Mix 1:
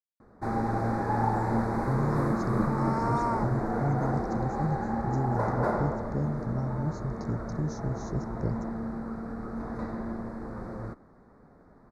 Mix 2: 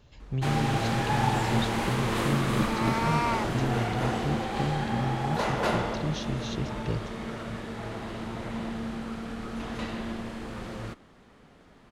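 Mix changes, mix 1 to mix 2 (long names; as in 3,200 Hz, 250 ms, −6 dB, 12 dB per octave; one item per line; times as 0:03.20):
speech: entry −1.55 s
first sound: add drawn EQ curve 1,200 Hz 0 dB, 3,600 Hz −5 dB, 6,700 Hz +15 dB
master: remove Butterworth band-reject 3,000 Hz, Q 0.58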